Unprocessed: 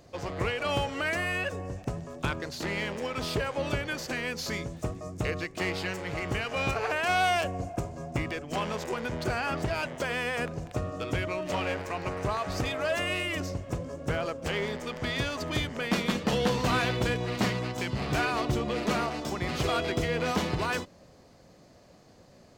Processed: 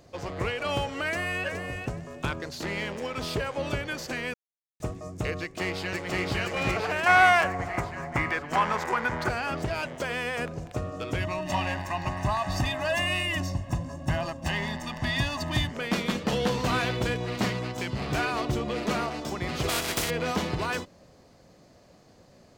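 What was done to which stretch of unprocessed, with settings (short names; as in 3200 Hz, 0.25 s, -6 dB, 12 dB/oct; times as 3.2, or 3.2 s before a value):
1.03–1.45 echo throw 0.42 s, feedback 15%, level -7.5 dB
4.34–4.8 mute
5.4–6.28 echo throw 0.52 s, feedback 55%, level 0 dB
7.06–9.29 band shelf 1300 Hz +10.5 dB
11.2–15.71 comb 1.1 ms, depth 95%
19.68–20.09 spectral contrast lowered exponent 0.38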